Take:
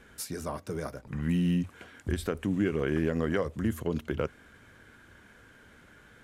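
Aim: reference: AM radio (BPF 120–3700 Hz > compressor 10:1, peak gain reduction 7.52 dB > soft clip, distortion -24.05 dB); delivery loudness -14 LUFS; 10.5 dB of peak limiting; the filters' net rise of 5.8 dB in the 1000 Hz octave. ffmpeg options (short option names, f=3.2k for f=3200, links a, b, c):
-af "equalizer=f=1k:t=o:g=7.5,alimiter=limit=-23.5dB:level=0:latency=1,highpass=120,lowpass=3.7k,acompressor=threshold=-34dB:ratio=10,asoftclip=threshold=-27dB,volume=27dB"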